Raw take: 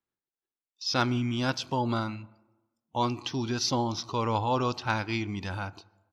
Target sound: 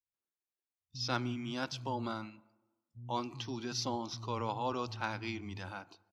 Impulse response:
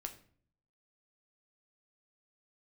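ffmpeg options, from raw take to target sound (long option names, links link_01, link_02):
-filter_complex "[0:a]acrossover=split=150[link_01][link_02];[link_02]adelay=140[link_03];[link_01][link_03]amix=inputs=2:normalize=0,volume=-8dB"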